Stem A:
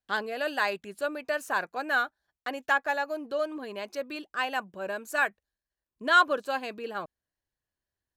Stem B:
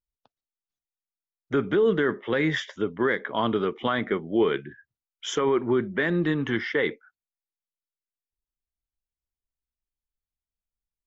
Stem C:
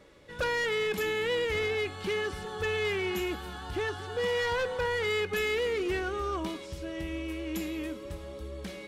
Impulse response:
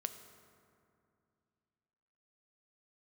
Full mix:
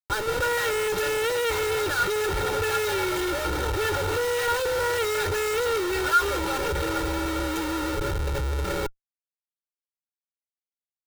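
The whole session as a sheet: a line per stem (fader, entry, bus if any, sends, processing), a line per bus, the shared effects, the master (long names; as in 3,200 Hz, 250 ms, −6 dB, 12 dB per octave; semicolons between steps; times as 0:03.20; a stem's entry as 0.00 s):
−4.0 dB, 0.00 s, no send, no processing
−8.5 dB, 0.00 s, no send, gate on every frequency bin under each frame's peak −15 dB weak
+2.0 dB, 0.00 s, no send, no processing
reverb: not used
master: comparator with hysteresis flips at −38.5 dBFS; comb filter 2.2 ms, depth 92%; hollow resonant body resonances 1,400/3,800 Hz, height 11 dB, ringing for 45 ms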